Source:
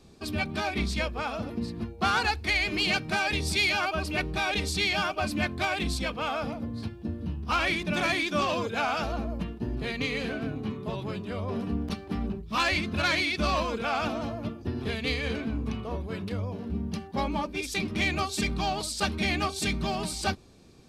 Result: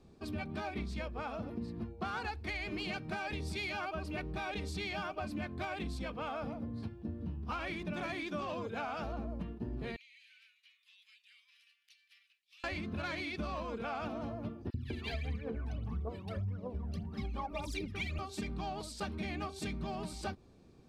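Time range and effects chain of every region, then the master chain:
9.96–12.64 s: steep high-pass 2.2 kHz + compression 8:1, threshold -46 dBFS
14.70–18.19 s: phaser 1.7 Hz, delay 1.8 ms, feedback 78% + three bands offset in time highs, lows, mids 40/200 ms, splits 240/1900 Hz
whole clip: treble shelf 2.3 kHz -10.5 dB; compression, threshold -30 dBFS; trim -5 dB

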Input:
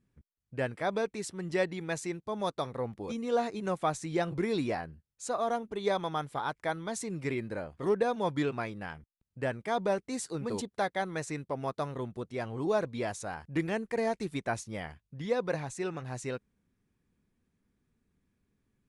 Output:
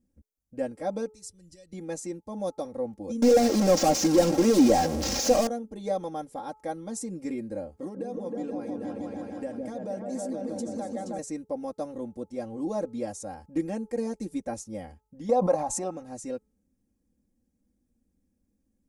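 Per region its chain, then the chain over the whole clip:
1.12–1.73 s: comb 2 ms, depth 31% + compression 3:1, threshold -32 dBFS + FFT filter 100 Hz 0 dB, 230 Hz -19 dB, 970 Hz -25 dB, 4.5 kHz -3 dB
3.22–5.47 s: one-bit delta coder 32 kbps, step -34.5 dBFS + high-pass 250 Hz 6 dB/octave + waveshaping leveller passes 5
7.76–11.19 s: high-pass 99 Hz + delay with an opening low-pass 158 ms, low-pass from 400 Hz, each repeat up 2 oct, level 0 dB + compression 4:1, threshold -32 dBFS
15.29–15.91 s: high-order bell 880 Hz +13.5 dB 1.3 oct + swell ahead of each attack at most 39 dB/s
whole clip: high-order bell 2 kHz -13.5 dB 2.4 oct; comb 3.7 ms, depth 91%; de-hum 431 Hz, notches 3

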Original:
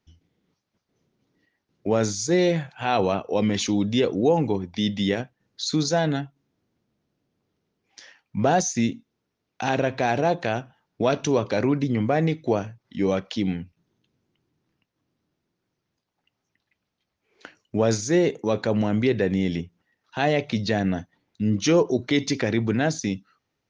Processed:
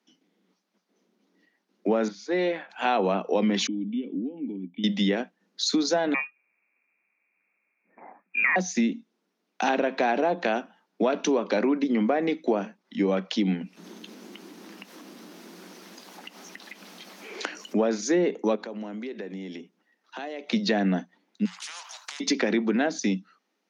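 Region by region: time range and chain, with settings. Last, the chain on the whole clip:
2.08–2.70 s: high-pass 780 Hz 6 dB/octave + distance through air 330 m
3.67–4.84 s: compression, threshold -23 dBFS + cascade formant filter i
6.14–8.56 s: frequency inversion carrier 2.6 kHz + tilt EQ -2 dB/octave
13.61–17.88 s: upward compressor, threshold -23 dBFS + treble shelf 6.3 kHz +5.5 dB
18.55–20.50 s: Chebyshev high-pass 250 Hz + compression 4:1, threshold -38 dBFS
21.45–22.20 s: steep high-pass 890 Hz 72 dB/octave + compression 4:1, threshold -34 dBFS + spectrum-flattening compressor 4:1
whole clip: Chebyshev high-pass 180 Hz, order 8; low-pass that closes with the level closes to 3 kHz, closed at -18 dBFS; compression, threshold -23 dBFS; trim +3.5 dB

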